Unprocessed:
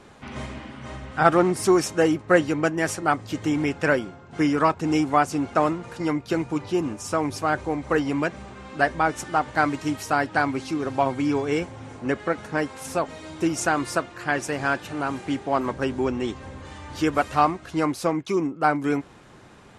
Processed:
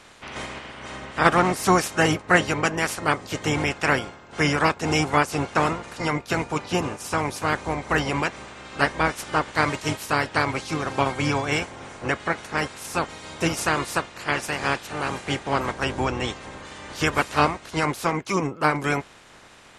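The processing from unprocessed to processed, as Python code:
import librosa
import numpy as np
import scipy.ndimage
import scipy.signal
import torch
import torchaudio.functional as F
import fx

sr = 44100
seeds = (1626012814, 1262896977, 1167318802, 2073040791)

y = fx.spec_clip(x, sr, under_db=17)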